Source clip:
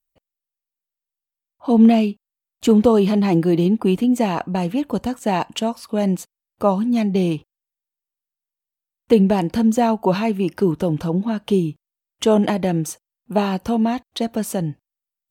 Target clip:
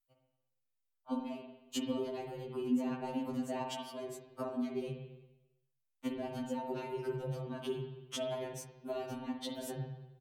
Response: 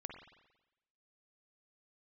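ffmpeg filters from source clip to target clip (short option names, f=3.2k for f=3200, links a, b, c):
-filter_complex "[0:a]bandreject=f=87.26:t=h:w=4,bandreject=f=174.52:t=h:w=4,bandreject=f=261.78:t=h:w=4,bandreject=f=349.04:t=h:w=4,bandreject=f=436.3:t=h:w=4,atempo=1.5,acrossover=split=140[a][b];[b]acompressor=threshold=-31dB:ratio=6[c];[a][c]amix=inputs=2:normalize=0[d];[1:a]atrim=start_sample=2205[e];[d][e]afir=irnorm=-1:irlink=0,afftfilt=real='re*2.45*eq(mod(b,6),0)':imag='im*2.45*eq(mod(b,6),0)':win_size=2048:overlap=0.75,volume=1.5dB"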